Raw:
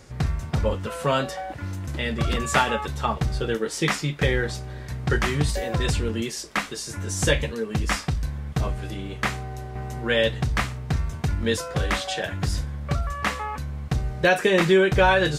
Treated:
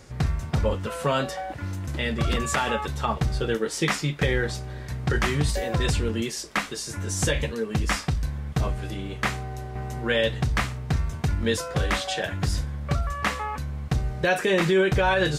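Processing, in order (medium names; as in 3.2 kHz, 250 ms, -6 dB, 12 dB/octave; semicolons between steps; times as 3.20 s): peak limiter -13 dBFS, peak gain reduction 8.5 dB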